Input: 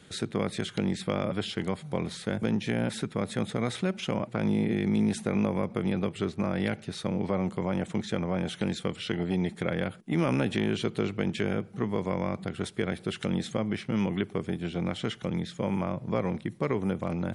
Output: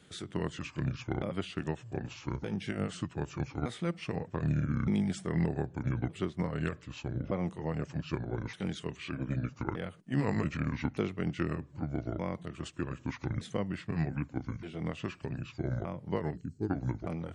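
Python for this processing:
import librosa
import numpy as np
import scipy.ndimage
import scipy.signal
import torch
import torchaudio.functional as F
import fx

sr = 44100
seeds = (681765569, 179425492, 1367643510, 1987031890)

y = fx.pitch_ramps(x, sr, semitones=-8.5, every_ms=1219)
y = fx.spec_box(y, sr, start_s=16.35, length_s=0.35, low_hz=480.0, high_hz=4000.0, gain_db=-14)
y = fx.upward_expand(y, sr, threshold_db=-32.0, expansion=1.5)
y = F.gain(torch.from_numpy(y), -1.5).numpy()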